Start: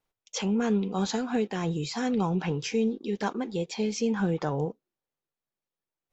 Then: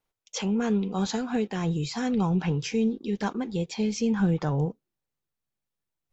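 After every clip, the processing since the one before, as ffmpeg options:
-af "asubboost=boost=2.5:cutoff=230"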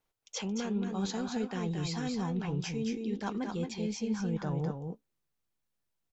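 -af "areverse,acompressor=threshold=0.0251:ratio=6,areverse,aecho=1:1:223|241:0.531|0.133"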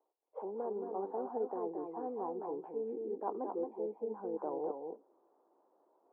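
-af "asuperpass=centerf=560:order=8:qfactor=0.83,areverse,acompressor=mode=upward:threshold=0.00224:ratio=2.5,areverse,volume=1.33"

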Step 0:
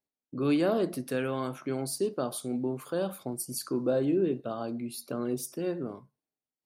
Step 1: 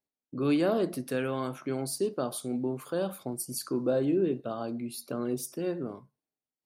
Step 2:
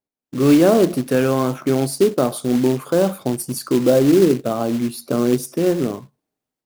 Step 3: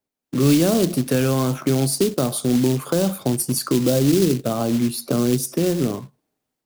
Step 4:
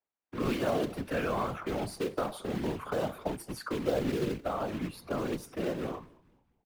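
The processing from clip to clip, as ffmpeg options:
-af anull
-af "tiltshelf=f=1400:g=4,dynaudnorm=f=220:g=3:m=3.55,acrusher=bits=4:mode=log:mix=0:aa=0.000001"
-filter_complex "[0:a]acrossover=split=190|3000[s0][s1][s2];[s1]acompressor=threshold=0.0447:ratio=3[s3];[s0][s3][s2]amix=inputs=3:normalize=0,volume=1.68"
-filter_complex "[0:a]acrossover=split=570 2700:gain=0.224 1 0.1[s0][s1][s2];[s0][s1][s2]amix=inputs=3:normalize=0,afftfilt=real='hypot(re,im)*cos(2*PI*random(0))':imag='hypot(re,im)*sin(2*PI*random(1))':win_size=512:overlap=0.75,asplit=4[s3][s4][s5][s6];[s4]adelay=219,afreqshift=-96,volume=0.0668[s7];[s5]adelay=438,afreqshift=-192,volume=0.0288[s8];[s6]adelay=657,afreqshift=-288,volume=0.0123[s9];[s3][s7][s8][s9]amix=inputs=4:normalize=0,volume=1.26"

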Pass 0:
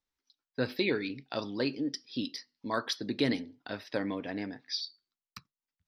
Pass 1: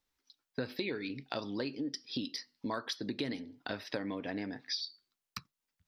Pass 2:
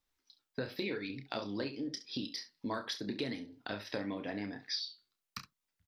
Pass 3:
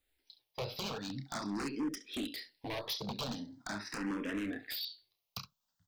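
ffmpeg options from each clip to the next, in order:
-af "acompressor=threshold=0.01:ratio=5,volume=1.88"
-filter_complex "[0:a]asplit=2[s0][s1];[s1]aecho=0:1:30|68:0.376|0.2[s2];[s0][s2]amix=inputs=2:normalize=0,flanger=delay=0.8:depth=8.9:regen=78:speed=0.89:shape=sinusoidal,volume=1.41"
-filter_complex "[0:a]aeval=exprs='0.0178*(abs(mod(val(0)/0.0178+3,4)-2)-1)':c=same,asplit=2[s0][s1];[s1]afreqshift=0.43[s2];[s0][s2]amix=inputs=2:normalize=1,volume=2"

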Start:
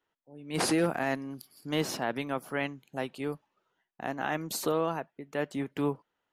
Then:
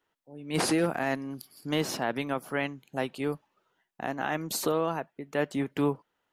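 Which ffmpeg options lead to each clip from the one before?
-af "alimiter=limit=0.1:level=0:latency=1:release=399,volume=1.5"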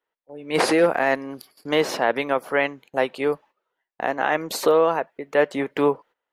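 -af "agate=range=0.2:threshold=0.00251:ratio=16:detection=peak,equalizer=f=125:t=o:w=1:g=-4,equalizer=f=500:t=o:w=1:g=11,equalizer=f=1000:t=o:w=1:g=6,equalizer=f=2000:t=o:w=1:g=8,equalizer=f=4000:t=o:w=1:g=4"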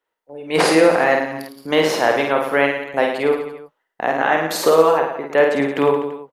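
-af "aecho=1:1:50|107.5|173.6|249.7|337.1:0.631|0.398|0.251|0.158|0.1,volume=1.41"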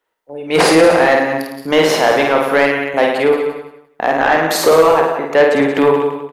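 -af "aecho=1:1:185|370:0.251|0.0452,acontrast=81,volume=0.891"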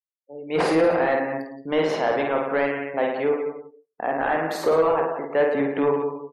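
-af "afftdn=nr=34:nf=-31,highshelf=f=2800:g=-10.5,volume=0.355"

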